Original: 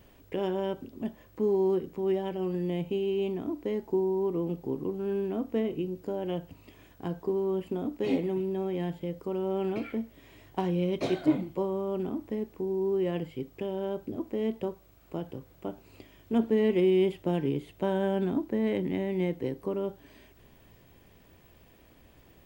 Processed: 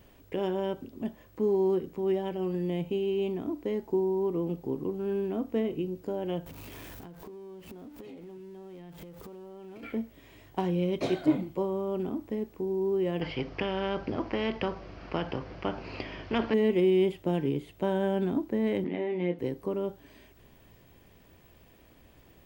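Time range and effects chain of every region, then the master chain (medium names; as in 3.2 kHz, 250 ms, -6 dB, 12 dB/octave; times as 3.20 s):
6.46–9.83 s: jump at every zero crossing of -41 dBFS + compression 16:1, threshold -42 dBFS
13.21–16.54 s: steep low-pass 5.2 kHz 48 dB/octave + peaking EQ 3.7 kHz -9.5 dB 0.34 oct + spectrum-flattening compressor 2:1
18.84–19.39 s: upward compressor, threshold -32 dBFS + band-pass 220–3200 Hz + doubling 23 ms -5.5 dB
whole clip: none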